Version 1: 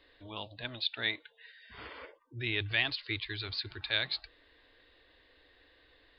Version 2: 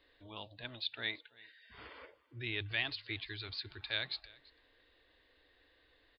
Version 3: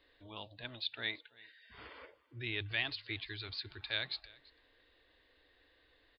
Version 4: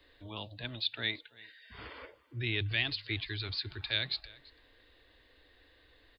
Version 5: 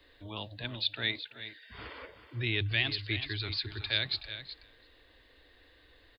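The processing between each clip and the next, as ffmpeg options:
-af "aecho=1:1:336:0.0708,volume=-5.5dB"
-af anull
-filter_complex "[0:a]bass=f=250:g=5,treble=f=4k:g=2,acrossover=split=180|580|1600[a][b][c][d];[c]alimiter=level_in=19.5dB:limit=-24dB:level=0:latency=1:release=424,volume=-19.5dB[e];[a][b][e][d]amix=inputs=4:normalize=0,volume=4.5dB"
-af "aecho=1:1:374:0.251,volume=2dB"

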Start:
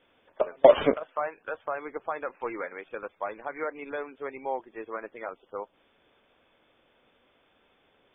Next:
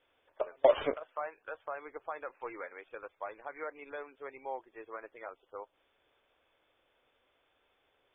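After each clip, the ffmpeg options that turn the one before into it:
-af "equalizer=f=200:w=1.5:g=-12,volume=-7dB"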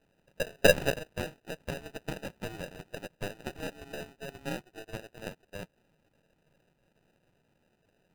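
-af "aeval=exprs='if(lt(val(0),0),0.447*val(0),val(0))':c=same,acrusher=samples=40:mix=1:aa=0.000001,equalizer=f=160:t=o:w=0.67:g=7,equalizer=f=1k:t=o:w=0.67:g=5,equalizer=f=2.5k:t=o:w=0.67:g=7,volume=3.5dB"

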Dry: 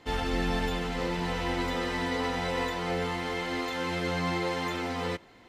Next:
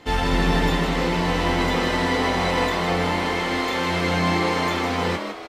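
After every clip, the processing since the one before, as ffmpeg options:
-filter_complex "[0:a]asplit=2[a][b];[b]adelay=24,volume=-11dB[c];[a][c]amix=inputs=2:normalize=0,asplit=2[d][e];[e]asplit=5[f][g][h][i][j];[f]adelay=157,afreqshift=120,volume=-7dB[k];[g]adelay=314,afreqshift=240,volume=-13.7dB[l];[h]adelay=471,afreqshift=360,volume=-20.5dB[m];[i]adelay=628,afreqshift=480,volume=-27.2dB[n];[j]adelay=785,afreqshift=600,volume=-34dB[o];[k][l][m][n][o]amix=inputs=5:normalize=0[p];[d][p]amix=inputs=2:normalize=0,volume=7.5dB"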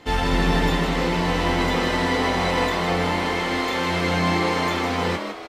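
-af anull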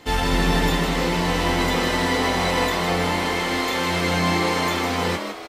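-af "highshelf=f=6.5k:g=10"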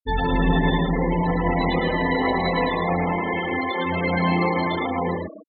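-af "afftfilt=real='re*gte(hypot(re,im),0.158)':imag='im*gte(hypot(re,im),0.158)':win_size=1024:overlap=0.75,aecho=1:1:110:0.562"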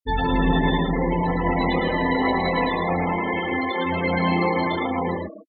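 -filter_complex "[0:a]asplit=2[a][b];[b]adelay=15,volume=-12dB[c];[a][c]amix=inputs=2:normalize=0"

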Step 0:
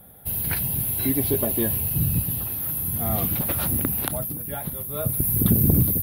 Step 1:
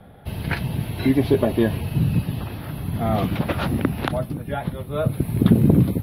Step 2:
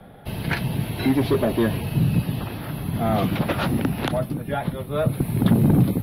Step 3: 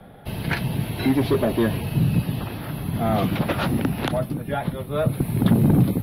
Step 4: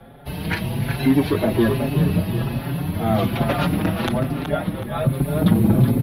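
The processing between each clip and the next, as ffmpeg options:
-filter_complex "[0:a]lowpass=3.2k,acrossover=split=120[a][b];[a]acompressor=threshold=-36dB:ratio=6[c];[c][b]amix=inputs=2:normalize=0,volume=7dB"
-filter_complex "[0:a]equalizer=f=73:w=1.6:g=-8.5,acrossover=split=140|3400[a][b][c];[b]asoftclip=type=tanh:threshold=-17.5dB[d];[a][d][c]amix=inputs=3:normalize=0,volume=2.5dB"
-af anull
-filter_complex "[0:a]asplit=2[a][b];[b]adelay=373,lowpass=f=4.8k:p=1,volume=-6dB,asplit=2[c][d];[d]adelay=373,lowpass=f=4.8k:p=1,volume=0.47,asplit=2[e][f];[f]adelay=373,lowpass=f=4.8k:p=1,volume=0.47,asplit=2[g][h];[h]adelay=373,lowpass=f=4.8k:p=1,volume=0.47,asplit=2[i][j];[j]adelay=373,lowpass=f=4.8k:p=1,volume=0.47,asplit=2[k][l];[l]adelay=373,lowpass=f=4.8k:p=1,volume=0.47[m];[a][c][e][g][i][k][m]amix=inputs=7:normalize=0,asplit=2[n][o];[o]adelay=5.5,afreqshift=1.2[p];[n][p]amix=inputs=2:normalize=1,volume=4dB"

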